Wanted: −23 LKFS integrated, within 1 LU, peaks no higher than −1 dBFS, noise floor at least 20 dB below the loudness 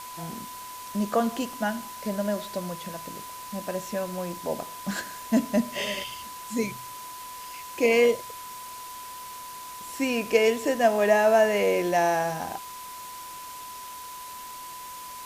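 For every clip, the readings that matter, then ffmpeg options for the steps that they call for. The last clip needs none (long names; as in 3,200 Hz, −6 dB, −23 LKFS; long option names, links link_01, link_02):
interfering tone 1,000 Hz; level of the tone −39 dBFS; background noise floor −40 dBFS; target noise floor −47 dBFS; integrated loudness −26.5 LKFS; sample peak −7.0 dBFS; target loudness −23.0 LKFS
→ -af "bandreject=frequency=1000:width=30"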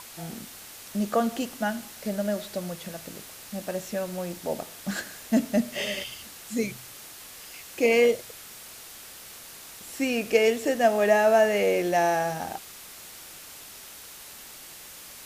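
interfering tone none found; background noise floor −45 dBFS; target noise floor −46 dBFS
→ -af "afftdn=noise_reduction=6:noise_floor=-45"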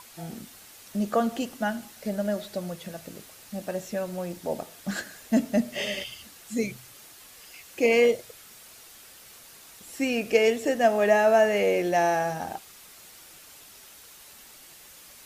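background noise floor −50 dBFS; integrated loudness −26.0 LKFS; sample peak −7.5 dBFS; target loudness −23.0 LKFS
→ -af "volume=3dB"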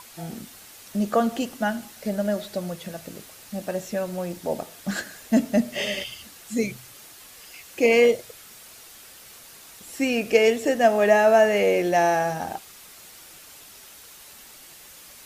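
integrated loudness −23.0 LKFS; sample peak −4.5 dBFS; background noise floor −47 dBFS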